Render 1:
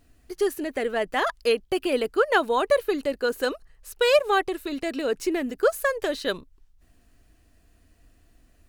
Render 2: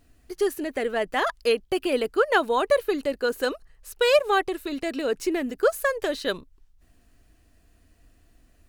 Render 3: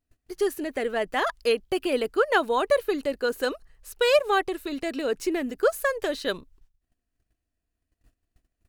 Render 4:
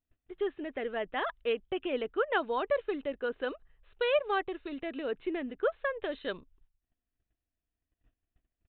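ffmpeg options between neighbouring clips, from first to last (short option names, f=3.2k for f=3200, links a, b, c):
-af anull
-af "agate=range=-22dB:threshold=-53dB:ratio=16:detection=peak,volume=-1dB"
-af "aresample=8000,aresample=44100,volume=-7.5dB"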